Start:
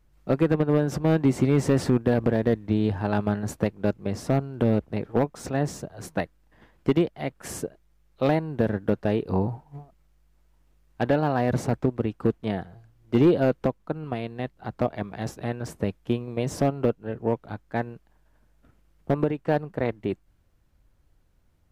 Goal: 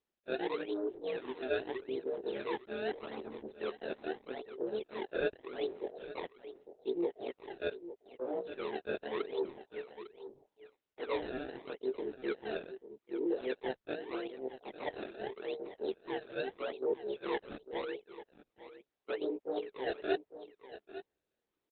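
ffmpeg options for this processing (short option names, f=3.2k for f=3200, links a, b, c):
-filter_complex "[0:a]afftfilt=real='re':imag='-im':win_size=2048:overlap=0.75,lowpass=8.9k,adynamicequalizer=threshold=0.00891:dfrequency=550:dqfactor=2.3:tfrequency=550:tqfactor=2.3:attack=5:release=100:ratio=0.375:range=3:mode=cutabove:tftype=bell,areverse,acompressor=threshold=-43dB:ratio=5,areverse,highpass=f=400:t=q:w=4.4,afwtdn=0.00631,acrusher=samples=24:mix=1:aa=0.000001:lfo=1:lforange=38.4:lforate=0.81,asplit=2[a][b];[b]aecho=0:1:851:0.224[c];[a][c]amix=inputs=2:normalize=0,volume=3dB" -ar 48000 -c:a libopus -b:a 8k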